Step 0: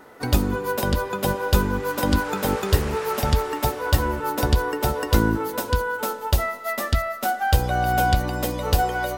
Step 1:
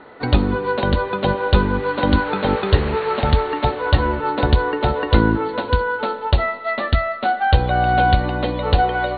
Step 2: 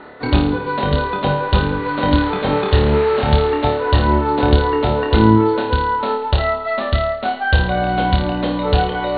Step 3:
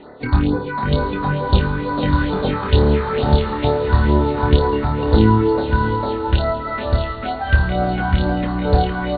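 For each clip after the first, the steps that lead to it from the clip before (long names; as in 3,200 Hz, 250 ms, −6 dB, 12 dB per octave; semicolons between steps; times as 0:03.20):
Chebyshev low-pass filter 4,400 Hz, order 10; level +5 dB
reversed playback; upward compression, threshold −19 dBFS; reversed playback; flutter between parallel walls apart 4.7 metres, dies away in 0.52 s; level −1 dB
all-pass phaser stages 4, 2.2 Hz, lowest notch 470–2,900 Hz; feedback delay with all-pass diffusion 672 ms, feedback 42%, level −9 dB; downsampling to 11,025 Hz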